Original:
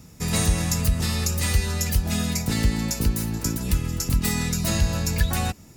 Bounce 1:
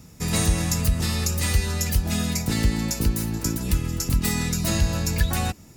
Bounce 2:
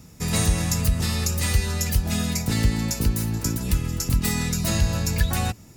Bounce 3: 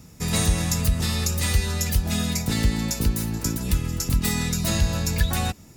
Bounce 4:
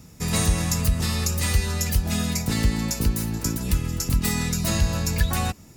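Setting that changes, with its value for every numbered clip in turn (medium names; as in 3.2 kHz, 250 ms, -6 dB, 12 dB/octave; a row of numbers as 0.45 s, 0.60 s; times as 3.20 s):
dynamic bell, frequency: 320 Hz, 110 Hz, 3.6 kHz, 1.1 kHz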